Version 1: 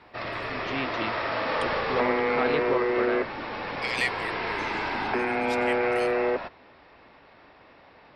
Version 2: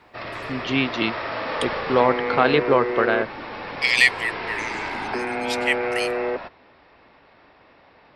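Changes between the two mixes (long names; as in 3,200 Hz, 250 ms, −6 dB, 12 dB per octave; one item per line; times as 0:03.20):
first voice +11.0 dB
second voice +11.5 dB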